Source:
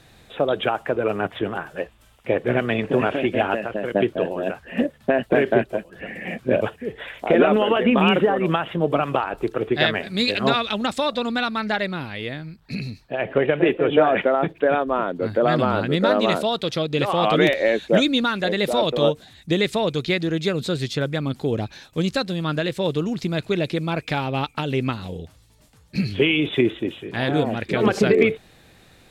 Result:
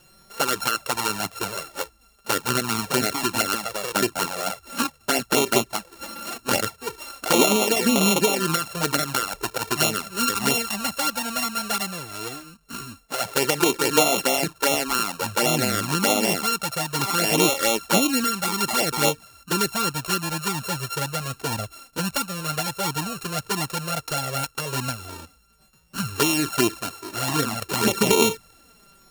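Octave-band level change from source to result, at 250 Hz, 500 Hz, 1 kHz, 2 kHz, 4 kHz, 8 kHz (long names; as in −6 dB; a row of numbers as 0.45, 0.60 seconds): −4.0 dB, −6.5 dB, −0.5 dB, −1.0 dB, +2.5 dB, can't be measured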